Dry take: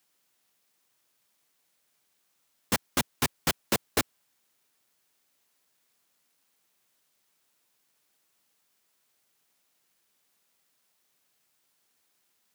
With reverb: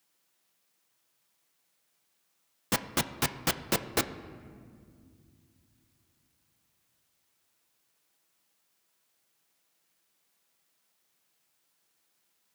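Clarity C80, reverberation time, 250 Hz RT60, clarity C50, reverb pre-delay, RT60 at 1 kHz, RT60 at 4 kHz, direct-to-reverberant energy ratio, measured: 14.5 dB, 2.2 s, 3.7 s, 13.5 dB, 6 ms, 1.9 s, 1.1 s, 9.0 dB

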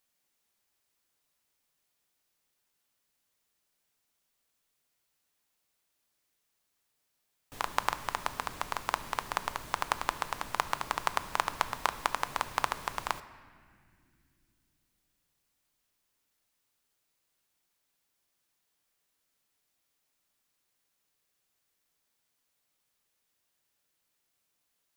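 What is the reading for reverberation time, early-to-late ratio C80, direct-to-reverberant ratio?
no single decay rate, 15.5 dB, 11.5 dB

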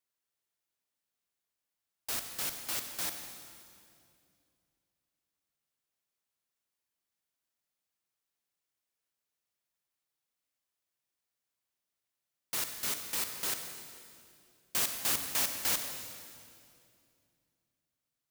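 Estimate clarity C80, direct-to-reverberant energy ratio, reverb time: 7.0 dB, 5.5 dB, 2.4 s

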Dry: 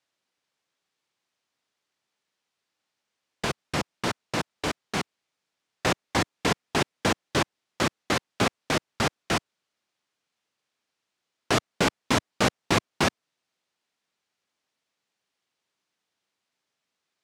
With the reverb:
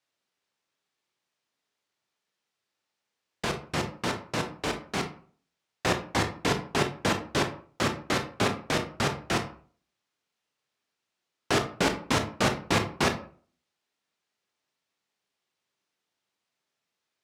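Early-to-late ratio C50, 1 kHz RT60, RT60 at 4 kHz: 10.5 dB, 0.45 s, 0.25 s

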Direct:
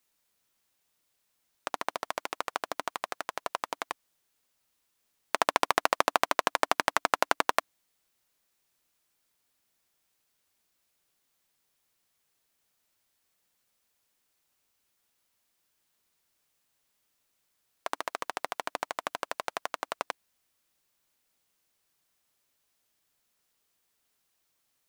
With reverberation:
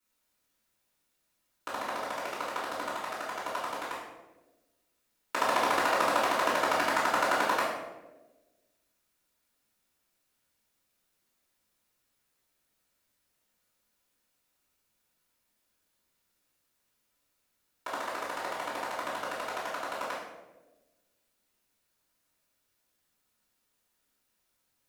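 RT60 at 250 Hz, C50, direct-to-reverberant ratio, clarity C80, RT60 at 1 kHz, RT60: 1.5 s, 2.0 dB, -12.5 dB, 5.0 dB, 0.95 s, 1.2 s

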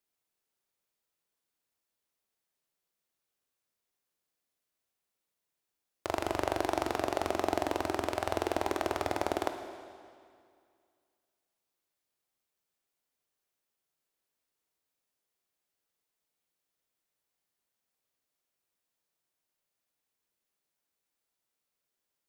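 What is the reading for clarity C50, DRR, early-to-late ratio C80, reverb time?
7.0 dB, 6.0 dB, 8.0 dB, 2.2 s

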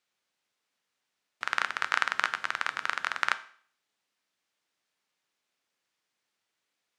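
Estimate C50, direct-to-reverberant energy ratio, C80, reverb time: 16.5 dB, 11.5 dB, 20.0 dB, 0.50 s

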